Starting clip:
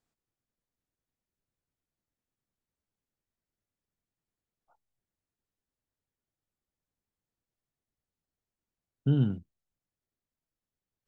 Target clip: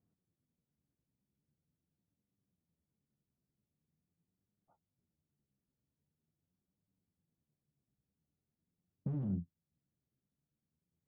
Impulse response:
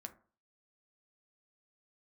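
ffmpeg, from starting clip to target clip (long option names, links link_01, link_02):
-af "asoftclip=type=hard:threshold=-33.5dB,bandpass=frequency=160:width_type=q:width=1.5:csg=0,acompressor=threshold=-53dB:ratio=2,flanger=delay=9.9:depth=5.5:regen=39:speed=0.44:shape=triangular,volume=16.5dB"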